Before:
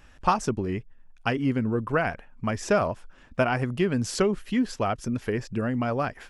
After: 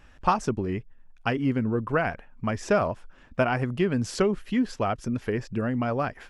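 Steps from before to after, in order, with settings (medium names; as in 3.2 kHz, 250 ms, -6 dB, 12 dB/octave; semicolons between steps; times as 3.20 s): treble shelf 5.4 kHz -6.5 dB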